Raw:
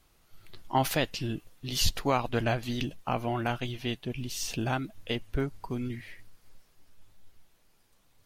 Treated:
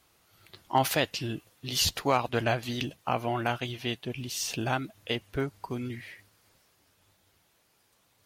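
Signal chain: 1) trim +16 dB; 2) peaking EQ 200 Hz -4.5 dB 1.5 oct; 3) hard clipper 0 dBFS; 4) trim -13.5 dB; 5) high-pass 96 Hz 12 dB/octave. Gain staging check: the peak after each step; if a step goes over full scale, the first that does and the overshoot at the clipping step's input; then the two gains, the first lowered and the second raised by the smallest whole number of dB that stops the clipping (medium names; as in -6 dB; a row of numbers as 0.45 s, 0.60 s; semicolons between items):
+4.0 dBFS, +4.0 dBFS, 0.0 dBFS, -13.5 dBFS, -12.5 dBFS; step 1, 4.0 dB; step 1 +12 dB, step 4 -9.5 dB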